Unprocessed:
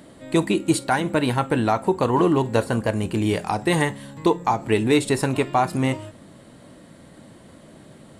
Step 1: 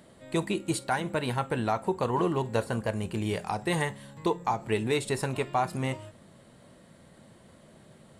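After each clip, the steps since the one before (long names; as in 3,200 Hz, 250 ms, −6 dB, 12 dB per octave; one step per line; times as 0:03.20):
parametric band 290 Hz −9.5 dB 0.27 octaves
level −7 dB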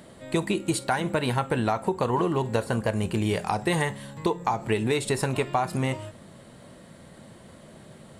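downward compressor, threshold −27 dBFS, peak gain reduction 6 dB
level +6.5 dB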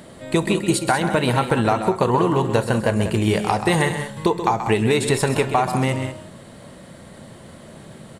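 loudspeakers that aren't time-aligned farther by 45 metres −10 dB, 66 metres −11 dB
level +6 dB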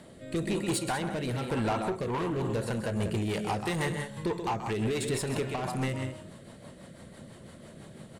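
soft clipping −19 dBFS, distortion −9 dB
rotating-speaker cabinet horn 1 Hz, later 6 Hz, at 0:01.76
level −5 dB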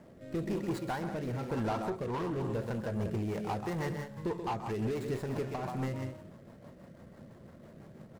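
running median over 15 samples
level −3.5 dB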